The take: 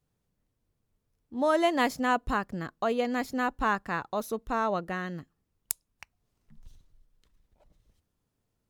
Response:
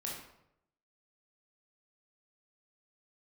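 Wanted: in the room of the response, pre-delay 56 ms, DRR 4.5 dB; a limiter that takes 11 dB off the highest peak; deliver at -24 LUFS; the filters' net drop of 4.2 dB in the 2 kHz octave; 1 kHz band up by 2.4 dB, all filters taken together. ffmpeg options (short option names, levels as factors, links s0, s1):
-filter_complex "[0:a]equalizer=f=1000:t=o:g=5,equalizer=f=2000:t=o:g=-8,alimiter=limit=0.133:level=0:latency=1,asplit=2[s0][s1];[1:a]atrim=start_sample=2205,adelay=56[s2];[s1][s2]afir=irnorm=-1:irlink=0,volume=0.562[s3];[s0][s3]amix=inputs=2:normalize=0,volume=1.68"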